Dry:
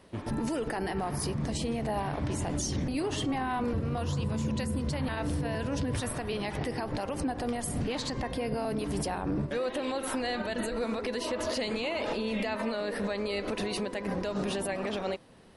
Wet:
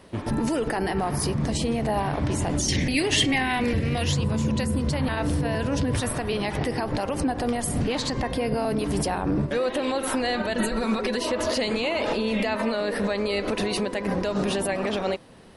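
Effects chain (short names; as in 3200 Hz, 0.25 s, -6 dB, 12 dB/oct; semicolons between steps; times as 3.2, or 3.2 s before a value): 2.68–4.17 resonant high shelf 1600 Hz +7 dB, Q 3; 10.59–11.17 comb 5.3 ms, depth 67%; gain +6.5 dB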